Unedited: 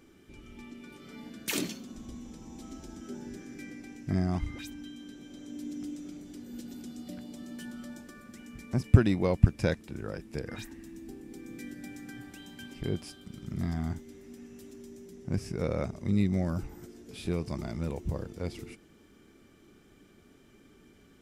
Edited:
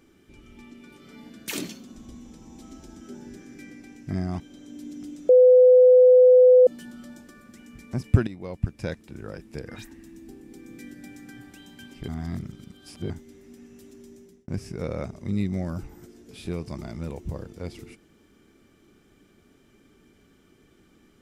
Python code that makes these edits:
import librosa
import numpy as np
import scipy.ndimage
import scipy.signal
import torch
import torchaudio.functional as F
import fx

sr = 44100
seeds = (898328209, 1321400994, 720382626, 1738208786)

y = fx.edit(x, sr, fx.cut(start_s=4.4, length_s=0.8),
    fx.bleep(start_s=6.09, length_s=1.38, hz=504.0, db=-10.0),
    fx.fade_in_from(start_s=9.07, length_s=1.0, floor_db=-14.0),
    fx.reverse_span(start_s=12.88, length_s=1.02),
    fx.fade_out_span(start_s=14.87, length_s=0.41, curve='qsin'), tone=tone)